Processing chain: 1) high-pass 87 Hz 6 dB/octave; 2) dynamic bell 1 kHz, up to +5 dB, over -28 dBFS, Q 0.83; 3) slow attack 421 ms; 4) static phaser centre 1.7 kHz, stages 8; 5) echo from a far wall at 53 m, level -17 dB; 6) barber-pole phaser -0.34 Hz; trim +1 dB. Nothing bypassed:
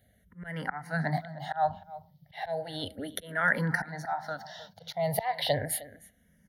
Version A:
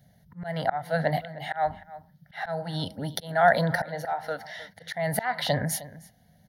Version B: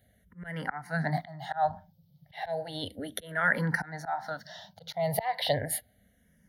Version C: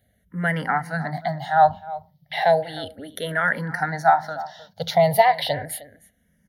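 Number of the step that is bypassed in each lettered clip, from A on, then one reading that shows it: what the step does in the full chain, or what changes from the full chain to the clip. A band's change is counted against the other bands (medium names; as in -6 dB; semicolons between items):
6, 500 Hz band +3.0 dB; 5, momentary loudness spread change -4 LU; 3, 1 kHz band +7.0 dB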